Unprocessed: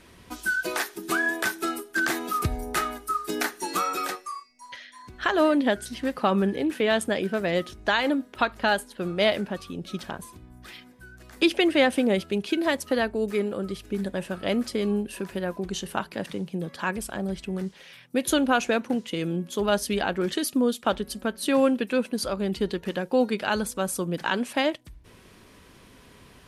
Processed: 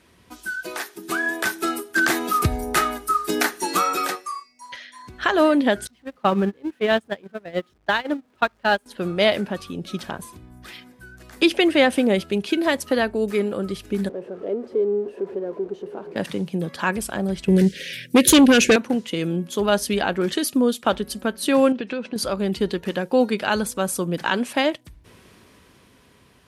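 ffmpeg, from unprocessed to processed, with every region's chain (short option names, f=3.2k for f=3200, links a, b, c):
-filter_complex "[0:a]asettb=1/sr,asplit=3[a][b][c];[a]atrim=end=5.874[d];[b]atrim=start=5.87:end=8.86,asetpts=PTS-STARTPTS,afade=t=in:d=0.004:c=qsin,afade=t=out:st=2.986:d=0.004:c=qsin,aeval=exprs='val(0)+0.5*0.0237*sgn(val(0))':c=same,agate=range=-29dB:threshold=-22dB:ratio=16:release=100:detection=peak,highshelf=f=5.6k:g=-10[e];[c]atrim=start=8.856[f];[d][e]acrossfade=d=0.004:c1=hsin:c2=qsin[g];[g][f]acrossfade=d=0.004:c1=qsin:c2=hsin,asettb=1/sr,asplit=3[h][i][j];[h]atrim=end=14.094[k];[i]atrim=start=14.09:end=16.16,asetpts=PTS-STARTPTS,afade=t=in:d=0.004:c=qsin,afade=t=out:st=2.066:d=0.004:c=qsin,aeval=exprs='val(0)+0.5*0.0473*sgn(val(0))':c=same,bandpass=f=420:t=q:w=5.2[l];[j]atrim=start=16.156[m];[k][l]acrossfade=d=0.004:c1=hsin:c2=qsin[n];[n][m]acrossfade=d=0.004:c1=qsin:c2=hsin,asettb=1/sr,asplit=3[o][p][q];[o]atrim=end=17.484[r];[p]atrim=start=17.48:end=18.76,asetpts=PTS-STARTPTS,afade=t=in:d=0.004:c=qsin,afade=t=out:st=1.276:d=0.004:c=qsin,asuperstop=centerf=940:order=8:qfactor=0.9,aeval=exprs='0.224*sin(PI/2*2*val(0)/0.224)':c=same[s];[q]atrim=start=18.756[t];[r][s]acrossfade=d=0.004:c1=hsin:c2=qsin[u];[u][t]acrossfade=d=0.004:c1=qsin:c2=hsin,asettb=1/sr,asplit=3[v][w][x];[v]atrim=end=21.724[y];[w]atrim=start=21.72:end=22.16,asetpts=PTS-STARTPTS,afade=t=in:d=0.004:c=qsin,afade=t=out:st=0.436:d=0.004:c=qsin,lowpass=f=5.7k:w=0.5412,lowpass=f=5.7k:w=1.3066,acompressor=threshold=-27dB:ratio=6:attack=3.2:release=140:knee=1:detection=peak[z];[x]atrim=start=22.156[aa];[y][z]acrossfade=d=0.004:c1=hsin:c2=qsin[ab];[ab][aa]acrossfade=d=0.004:c1=qsin:c2=hsin,dynaudnorm=f=320:g=9:m=11.5dB,highpass=52,volume=-4dB"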